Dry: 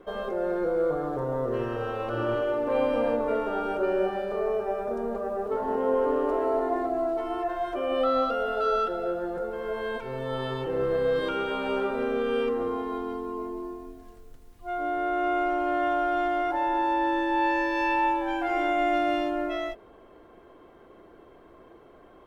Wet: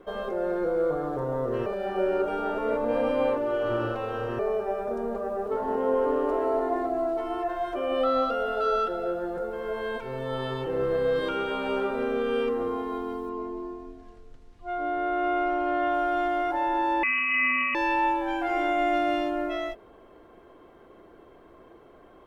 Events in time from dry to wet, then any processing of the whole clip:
0:01.66–0:04.39: reverse
0:13.29–0:15.94: low-pass filter 5,400 Hz
0:17.03–0:17.75: voice inversion scrambler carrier 2,900 Hz

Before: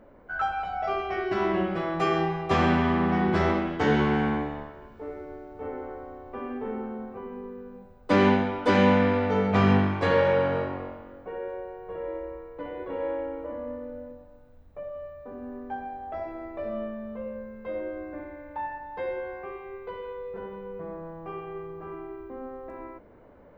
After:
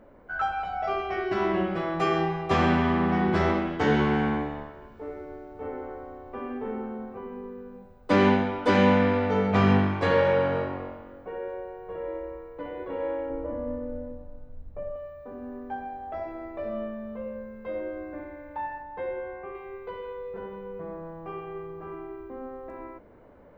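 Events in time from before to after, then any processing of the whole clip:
0:13.30–0:14.96: spectral tilt −2.5 dB per octave
0:18.82–0:19.55: high-frequency loss of the air 290 metres

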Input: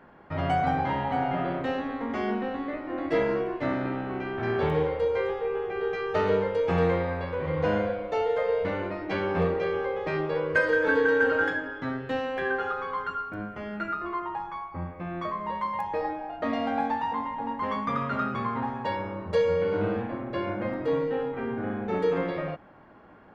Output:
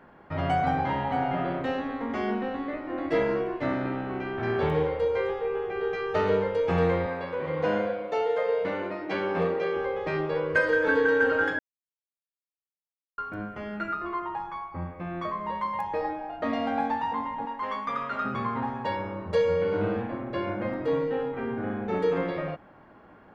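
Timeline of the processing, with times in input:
0:07.06–0:09.77: high-pass filter 180 Hz
0:11.59–0:13.18: silence
0:17.45–0:18.25: parametric band 120 Hz −14.5 dB 2.7 octaves

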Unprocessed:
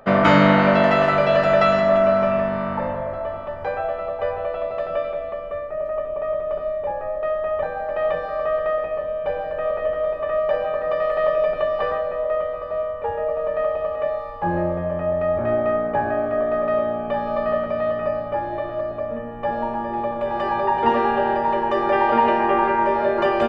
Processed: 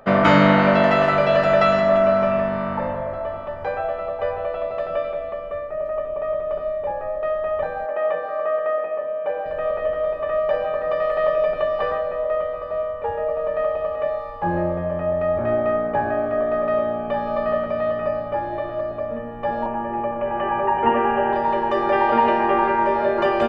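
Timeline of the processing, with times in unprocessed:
0:07.86–0:09.46: three-way crossover with the lows and the highs turned down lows −20 dB, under 210 Hz, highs −14 dB, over 2,900 Hz
0:19.66–0:21.33: Butterworth low-pass 3,100 Hz 96 dB per octave

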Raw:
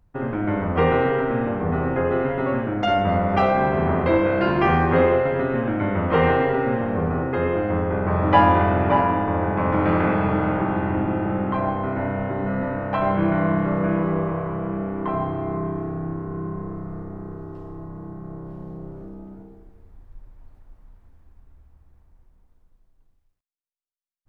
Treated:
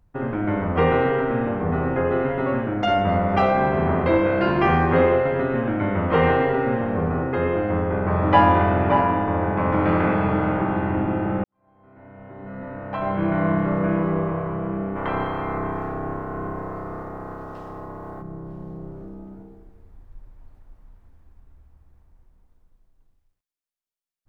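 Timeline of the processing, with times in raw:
0:11.44–0:13.48: fade in quadratic
0:14.95–0:18.21: ceiling on every frequency bin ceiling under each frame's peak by 18 dB

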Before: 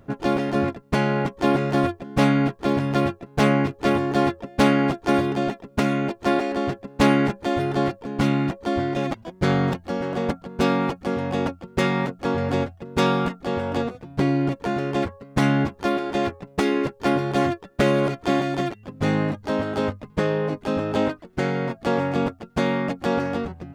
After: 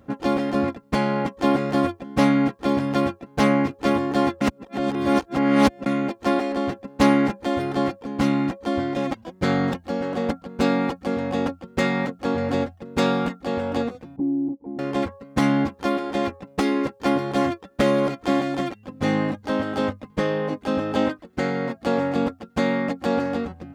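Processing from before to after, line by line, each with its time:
0:04.41–0:05.86: reverse
0:14.16–0:14.79: formant resonators in series u
whole clip: high-pass filter 52 Hz; comb filter 3.8 ms, depth 41%; level −1 dB

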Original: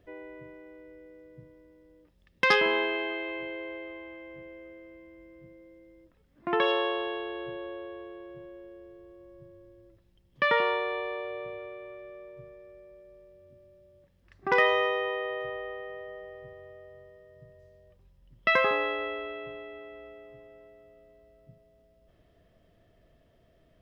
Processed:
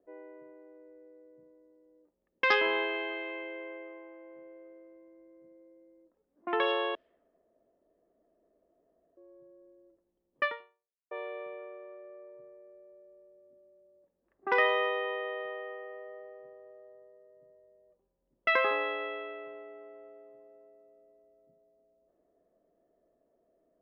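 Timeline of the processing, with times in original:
0:06.95–0:09.17: fill with room tone
0:10.44–0:11.11: fade out exponential
whole clip: three-way crossover with the lows and the highs turned down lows −22 dB, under 250 Hz, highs −21 dB, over 5,100 Hz; low-pass that shuts in the quiet parts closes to 660 Hz, open at −27.5 dBFS; parametric band 110 Hz −8 dB 0.9 octaves; level −2.5 dB

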